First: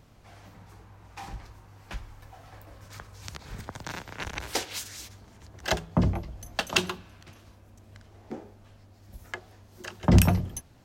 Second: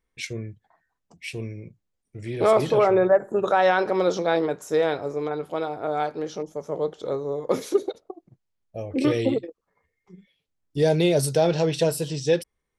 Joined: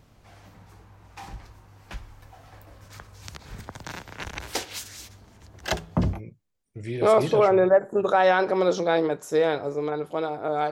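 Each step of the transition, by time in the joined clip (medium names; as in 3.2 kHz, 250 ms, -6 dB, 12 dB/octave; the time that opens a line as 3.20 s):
first
6.17 s: go over to second from 1.56 s, crossfade 0.10 s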